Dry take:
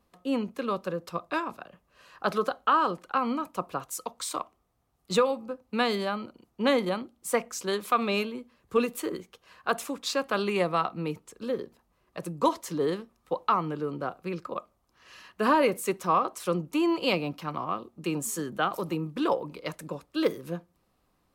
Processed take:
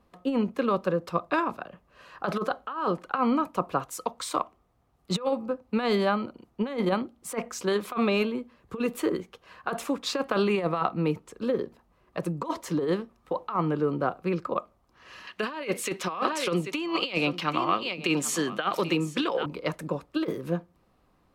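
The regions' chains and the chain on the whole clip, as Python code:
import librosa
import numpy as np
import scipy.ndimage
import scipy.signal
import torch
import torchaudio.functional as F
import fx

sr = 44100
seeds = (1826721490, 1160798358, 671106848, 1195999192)

y = fx.chain(x, sr, fx.weighting(curve='D'),
    fx.echo_single(ms=786, db=-16.5), at=(15.27, 19.46))
y = fx.high_shelf(y, sr, hz=4100.0, db=-10.5)
y = fx.over_compress(y, sr, threshold_db=-28.0, ratio=-0.5)
y = y * librosa.db_to_amplitude(3.5)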